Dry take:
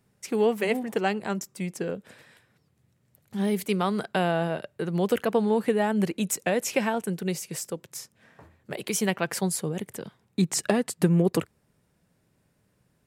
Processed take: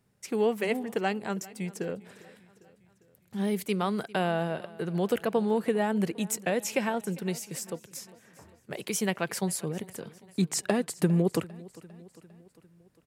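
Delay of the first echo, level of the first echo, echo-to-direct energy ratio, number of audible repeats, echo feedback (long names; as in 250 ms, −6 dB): 401 ms, −21.0 dB, −19.5 dB, 3, 57%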